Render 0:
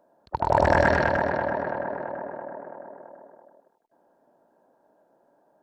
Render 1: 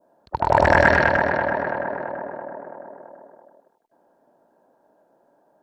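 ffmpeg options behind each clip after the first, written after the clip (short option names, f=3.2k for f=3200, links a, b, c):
-af "adynamicequalizer=threshold=0.0141:dfrequency=2100:dqfactor=0.88:tfrequency=2100:tqfactor=0.88:attack=5:release=100:ratio=0.375:range=3:mode=boostabove:tftype=bell,volume=2.5dB"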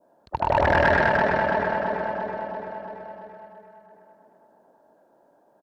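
-filter_complex "[0:a]asoftclip=type=tanh:threshold=-13dB,acrossover=split=3400[a][b];[b]acompressor=threshold=-47dB:ratio=4:attack=1:release=60[c];[a][c]amix=inputs=2:normalize=0,aecho=1:1:338|676|1014|1352|1690|2028|2366:0.355|0.206|0.119|0.0692|0.0402|0.0233|0.0135"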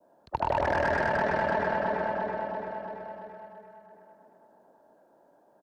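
-filter_complex "[0:a]acrossover=split=240|3000[a][b][c];[a]acompressor=threshold=-36dB:ratio=4[d];[b]acompressor=threshold=-22dB:ratio=4[e];[c]acompressor=threshold=-45dB:ratio=4[f];[d][e][f]amix=inputs=3:normalize=0,acrossover=split=540|1400[g][h][i];[i]asoftclip=type=tanh:threshold=-28.5dB[j];[g][h][j]amix=inputs=3:normalize=0,volume=-1.5dB"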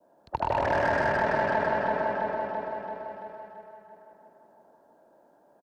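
-af "aecho=1:1:161:0.562"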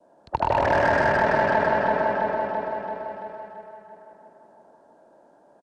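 -af "aresample=22050,aresample=44100,volume=5dB"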